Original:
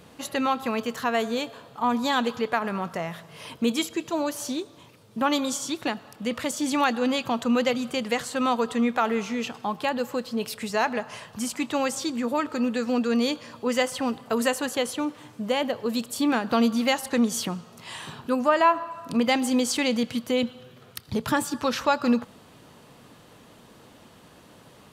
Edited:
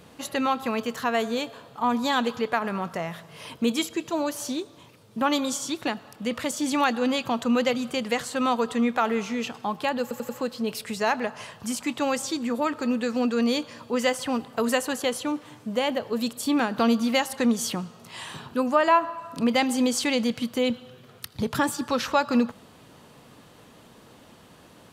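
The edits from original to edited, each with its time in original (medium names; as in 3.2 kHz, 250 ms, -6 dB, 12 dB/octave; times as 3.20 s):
10.02 s: stutter 0.09 s, 4 plays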